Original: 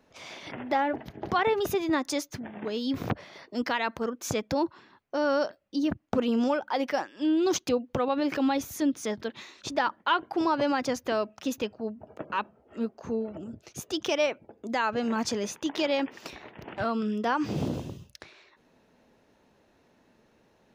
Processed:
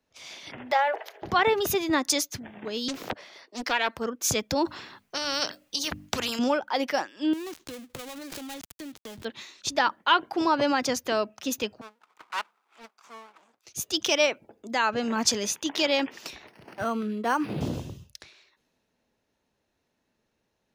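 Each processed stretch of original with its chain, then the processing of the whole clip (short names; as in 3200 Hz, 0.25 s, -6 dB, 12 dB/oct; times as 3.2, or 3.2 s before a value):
0.71–1.22 steep high-pass 440 Hz 48 dB/oct + transient shaper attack +2 dB, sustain +6 dB
2.88–3.97 HPF 290 Hz + Doppler distortion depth 0.63 ms
4.65–6.39 notches 50/100/150/200/250/300 Hz + spectral compressor 2:1
7.33–9.25 switching dead time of 0.26 ms + compressor 8:1, threshold -34 dBFS + transient shaper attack +1 dB, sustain +7 dB
11.81–13.65 minimum comb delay 0.85 ms + HPF 860 Hz + Doppler distortion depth 0.44 ms
16.47–17.61 HPF 120 Hz + decimation joined by straight lines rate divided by 6×
whole clip: high shelf 2400 Hz +9 dB; three-band expander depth 40%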